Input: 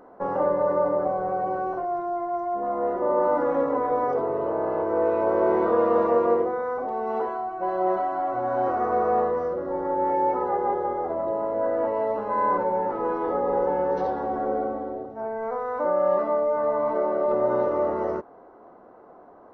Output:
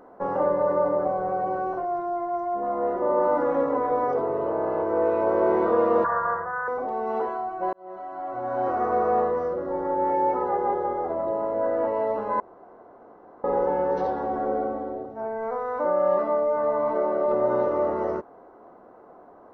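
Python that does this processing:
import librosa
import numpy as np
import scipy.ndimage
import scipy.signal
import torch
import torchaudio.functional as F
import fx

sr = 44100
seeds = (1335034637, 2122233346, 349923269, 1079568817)

y = fx.curve_eq(x, sr, hz=(170.0, 270.0, 540.0, 1700.0, 2600.0, 4500.0), db=(0, -28, -10, 14, -30, -12), at=(6.04, 6.68))
y = fx.edit(y, sr, fx.fade_in_span(start_s=7.73, length_s=1.07),
    fx.room_tone_fill(start_s=12.4, length_s=1.04), tone=tone)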